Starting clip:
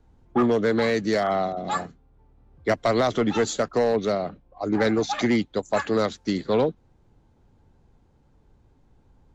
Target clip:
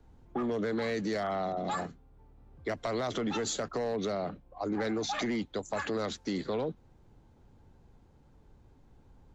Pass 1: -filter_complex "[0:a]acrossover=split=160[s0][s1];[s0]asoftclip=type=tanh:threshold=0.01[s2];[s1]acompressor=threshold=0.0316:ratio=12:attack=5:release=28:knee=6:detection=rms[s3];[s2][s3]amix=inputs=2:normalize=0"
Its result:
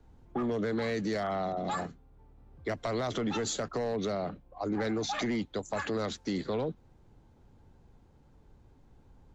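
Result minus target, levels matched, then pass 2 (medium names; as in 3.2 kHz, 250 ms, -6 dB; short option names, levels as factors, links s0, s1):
saturation: distortion -4 dB
-filter_complex "[0:a]acrossover=split=160[s0][s1];[s0]asoftclip=type=tanh:threshold=0.00501[s2];[s1]acompressor=threshold=0.0316:ratio=12:attack=5:release=28:knee=6:detection=rms[s3];[s2][s3]amix=inputs=2:normalize=0"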